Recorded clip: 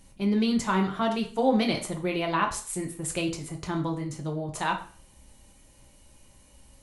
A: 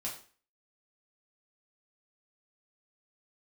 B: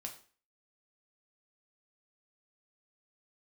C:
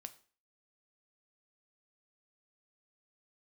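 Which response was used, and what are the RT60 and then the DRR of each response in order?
B; 0.40, 0.40, 0.40 seconds; −4.5, 1.5, 9.0 decibels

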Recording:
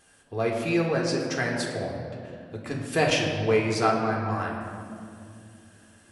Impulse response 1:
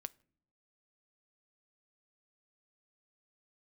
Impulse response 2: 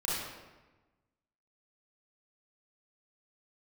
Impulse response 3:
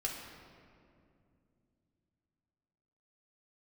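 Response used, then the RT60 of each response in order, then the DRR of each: 3; non-exponential decay, 1.2 s, 2.5 s; 15.0, −7.5, −2.0 decibels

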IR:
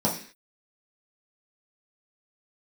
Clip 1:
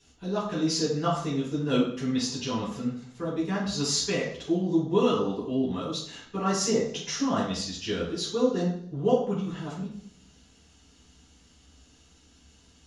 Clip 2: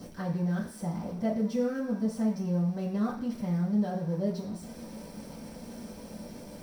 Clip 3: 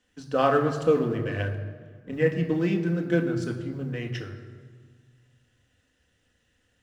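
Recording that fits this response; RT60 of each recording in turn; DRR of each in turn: 2; 0.60, 0.45, 1.6 seconds; −7.0, −6.0, 2.5 decibels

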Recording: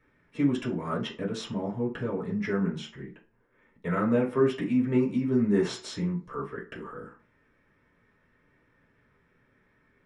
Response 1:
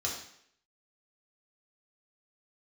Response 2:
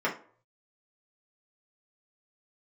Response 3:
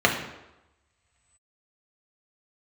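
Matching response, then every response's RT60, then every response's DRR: 2; 0.65 s, non-exponential decay, 0.95 s; −3.0, −5.0, −0.5 decibels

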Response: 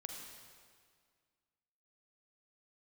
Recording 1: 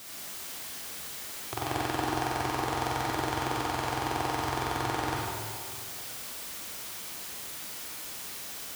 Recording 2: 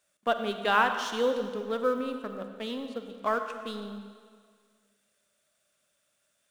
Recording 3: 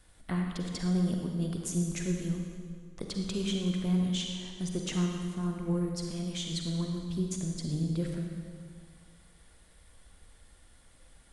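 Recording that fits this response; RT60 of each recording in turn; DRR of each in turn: 3; 1.9, 1.9, 1.9 seconds; −5.0, 7.0, 1.5 decibels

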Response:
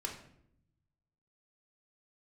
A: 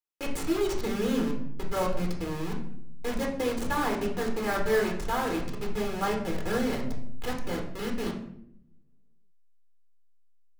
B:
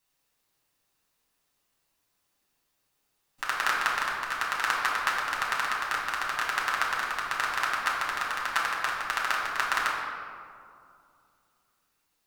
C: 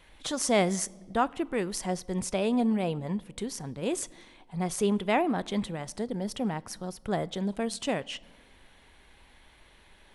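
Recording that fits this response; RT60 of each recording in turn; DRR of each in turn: A; 0.70 s, 2.4 s, non-exponential decay; 0.5, −5.0, 19.0 decibels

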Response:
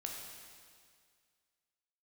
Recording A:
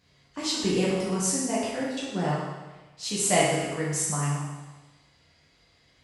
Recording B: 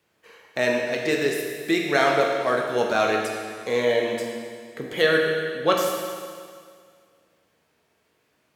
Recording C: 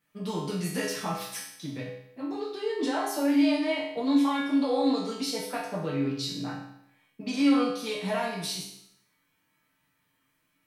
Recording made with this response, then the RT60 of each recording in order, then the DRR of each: B; 1.2, 2.0, 0.75 seconds; −7.5, −0.5, −7.5 decibels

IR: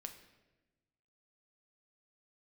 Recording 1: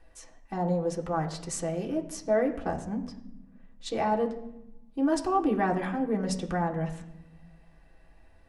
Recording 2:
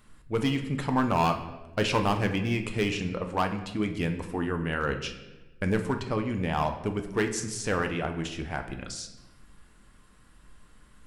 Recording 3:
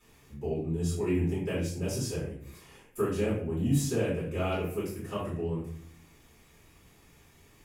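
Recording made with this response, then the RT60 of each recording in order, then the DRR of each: 2; 0.85, 1.1, 0.55 seconds; −0.5, 5.5, −11.5 decibels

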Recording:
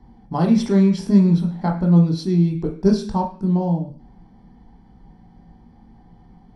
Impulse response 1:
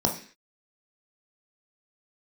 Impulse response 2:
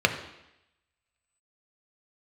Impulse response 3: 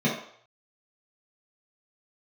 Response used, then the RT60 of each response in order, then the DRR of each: 1; 0.45, 0.85, 0.60 seconds; 1.5, 5.0, −7.0 decibels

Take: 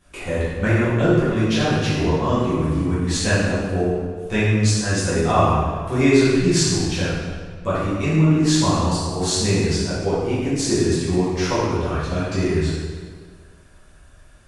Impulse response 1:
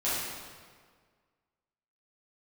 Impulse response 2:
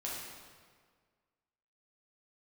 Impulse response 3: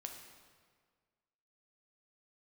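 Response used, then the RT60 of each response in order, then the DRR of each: 1; 1.7, 1.7, 1.7 seconds; −12.0, −6.0, 2.5 decibels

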